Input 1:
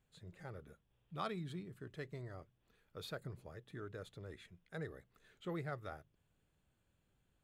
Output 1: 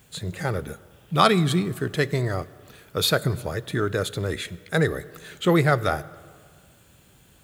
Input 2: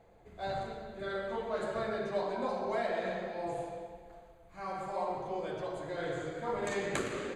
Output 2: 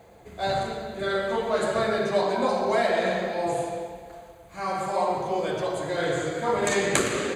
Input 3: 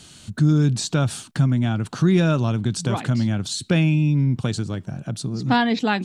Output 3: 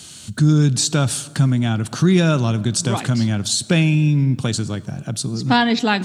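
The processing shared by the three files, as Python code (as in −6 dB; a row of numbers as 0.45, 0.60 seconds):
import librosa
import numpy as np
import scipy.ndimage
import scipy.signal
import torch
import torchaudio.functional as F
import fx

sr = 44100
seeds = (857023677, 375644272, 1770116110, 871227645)

y = scipy.signal.sosfilt(scipy.signal.butter(2, 56.0, 'highpass', fs=sr, output='sos'), x)
y = fx.high_shelf(y, sr, hz=4200.0, db=9.0)
y = fx.rev_plate(y, sr, seeds[0], rt60_s=2.0, hf_ratio=0.6, predelay_ms=0, drr_db=18.0)
y = librosa.util.normalize(y) * 10.0 ** (-2 / 20.0)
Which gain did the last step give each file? +23.0, +10.0, +2.5 decibels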